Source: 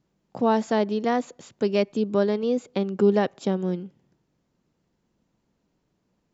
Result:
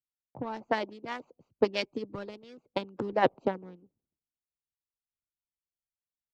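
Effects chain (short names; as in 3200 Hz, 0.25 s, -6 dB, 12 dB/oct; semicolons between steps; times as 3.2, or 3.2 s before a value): Wiener smoothing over 25 samples; air absorption 58 m; harmonic-percussive split harmonic -18 dB; dynamic EQ 910 Hz, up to +6 dB, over -54 dBFS, Q 5.2; three-band expander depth 100%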